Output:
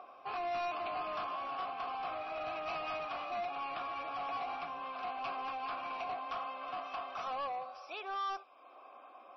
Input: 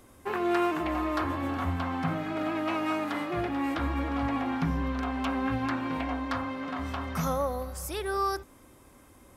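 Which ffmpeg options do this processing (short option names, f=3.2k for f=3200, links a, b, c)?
-filter_complex "[0:a]highshelf=f=5.6k:g=10.5,acrossover=split=1800[a][b];[a]acompressor=mode=upward:threshold=-37dB:ratio=2.5[c];[c][b]amix=inputs=2:normalize=0,asplit=3[d][e][f];[d]bandpass=f=730:t=q:w=8,volume=0dB[g];[e]bandpass=f=1.09k:t=q:w=8,volume=-6dB[h];[f]bandpass=f=2.44k:t=q:w=8,volume=-9dB[i];[g][h][i]amix=inputs=3:normalize=0,tiltshelf=f=1.5k:g=-3,asplit=2[j][k];[k]highpass=f=720:p=1,volume=21dB,asoftclip=type=tanh:threshold=-25dB[l];[j][l]amix=inputs=2:normalize=0,lowpass=f=4.9k:p=1,volume=-6dB,volume=-5dB" -ar 22050 -c:a libmp3lame -b:a 24k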